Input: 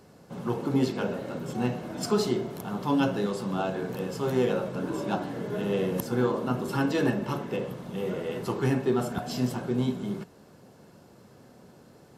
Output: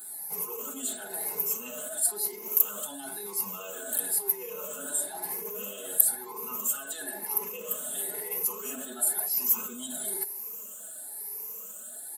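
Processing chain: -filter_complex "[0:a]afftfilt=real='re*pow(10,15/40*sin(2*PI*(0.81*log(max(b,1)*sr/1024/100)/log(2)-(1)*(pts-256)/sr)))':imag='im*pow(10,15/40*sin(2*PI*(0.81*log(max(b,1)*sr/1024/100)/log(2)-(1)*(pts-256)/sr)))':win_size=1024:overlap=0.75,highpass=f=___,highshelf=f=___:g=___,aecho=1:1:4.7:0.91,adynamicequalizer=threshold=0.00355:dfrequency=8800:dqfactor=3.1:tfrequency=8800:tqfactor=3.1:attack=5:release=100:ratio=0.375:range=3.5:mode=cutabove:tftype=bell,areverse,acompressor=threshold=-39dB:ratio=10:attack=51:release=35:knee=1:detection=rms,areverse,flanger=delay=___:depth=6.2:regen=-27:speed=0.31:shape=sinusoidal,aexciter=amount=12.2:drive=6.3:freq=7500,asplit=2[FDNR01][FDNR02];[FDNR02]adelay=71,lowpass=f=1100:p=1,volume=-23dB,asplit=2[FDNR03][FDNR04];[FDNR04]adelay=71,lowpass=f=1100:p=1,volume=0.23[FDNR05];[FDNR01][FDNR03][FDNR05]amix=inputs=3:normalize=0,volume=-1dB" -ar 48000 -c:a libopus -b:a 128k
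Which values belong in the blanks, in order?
480, 4100, 11, 0.8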